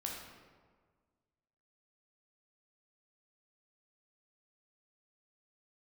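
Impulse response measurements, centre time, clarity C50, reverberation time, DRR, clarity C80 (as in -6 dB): 64 ms, 1.5 dB, 1.6 s, -1.5 dB, 4.0 dB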